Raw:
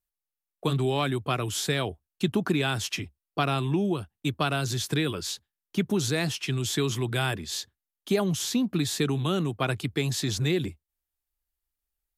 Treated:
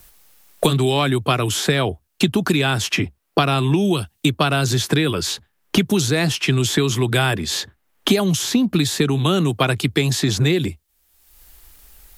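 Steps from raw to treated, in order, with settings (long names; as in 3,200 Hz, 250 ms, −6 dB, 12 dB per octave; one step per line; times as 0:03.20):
multiband upward and downward compressor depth 100%
level +8 dB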